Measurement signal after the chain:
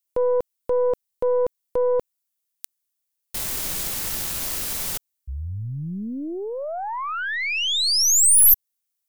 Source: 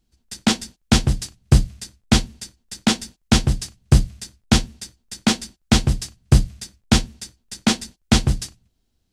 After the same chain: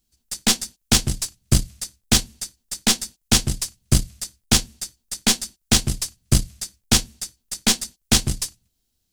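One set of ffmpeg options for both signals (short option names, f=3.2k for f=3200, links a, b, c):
-af "crystalizer=i=3.5:c=0,aeval=exprs='1.58*(cos(1*acos(clip(val(0)/1.58,-1,1)))-cos(1*PI/2))+0.112*(cos(5*acos(clip(val(0)/1.58,-1,1)))-cos(5*PI/2))+0.178*(cos(6*acos(clip(val(0)/1.58,-1,1)))-cos(6*PI/2))+0.1*(cos(7*acos(clip(val(0)/1.58,-1,1)))-cos(7*PI/2))':c=same,volume=-6dB"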